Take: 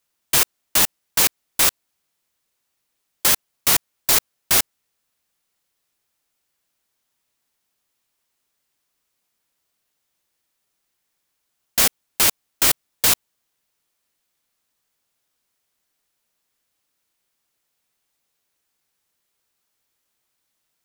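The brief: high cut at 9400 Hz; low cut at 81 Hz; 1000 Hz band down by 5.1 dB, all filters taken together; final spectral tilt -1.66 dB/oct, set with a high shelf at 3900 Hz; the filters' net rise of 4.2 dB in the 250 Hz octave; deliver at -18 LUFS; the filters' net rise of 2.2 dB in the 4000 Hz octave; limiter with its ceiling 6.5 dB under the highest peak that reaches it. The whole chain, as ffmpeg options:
-af "highpass=81,lowpass=9.4k,equalizer=f=250:t=o:g=6,equalizer=f=1k:t=o:g=-7,highshelf=f=3.9k:g=-3.5,equalizer=f=4k:t=o:g=5.5,volume=7dB,alimiter=limit=-4.5dB:level=0:latency=1"

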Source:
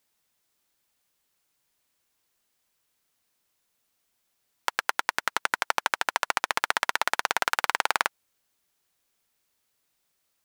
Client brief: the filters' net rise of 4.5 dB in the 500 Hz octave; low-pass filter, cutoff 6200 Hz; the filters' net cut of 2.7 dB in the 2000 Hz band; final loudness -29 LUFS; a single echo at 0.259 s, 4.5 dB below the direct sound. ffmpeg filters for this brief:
-af "lowpass=6.2k,equalizer=f=500:t=o:g=6,equalizer=f=2k:t=o:g=-4,aecho=1:1:259:0.596,volume=-1.5dB"

